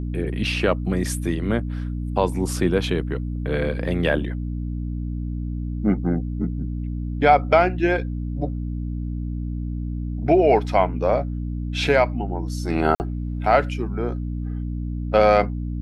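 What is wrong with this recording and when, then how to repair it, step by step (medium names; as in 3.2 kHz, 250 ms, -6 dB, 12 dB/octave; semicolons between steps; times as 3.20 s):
hum 60 Hz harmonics 5 -27 dBFS
12.95–13.00 s: dropout 49 ms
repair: de-hum 60 Hz, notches 5; interpolate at 12.95 s, 49 ms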